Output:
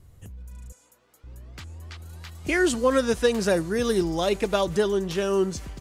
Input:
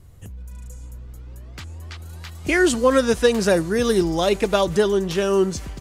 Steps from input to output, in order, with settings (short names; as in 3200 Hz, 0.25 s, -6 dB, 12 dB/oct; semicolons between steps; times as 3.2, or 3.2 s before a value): 0.72–1.24 HPF 550 Hz 12 dB/oct; gain -4.5 dB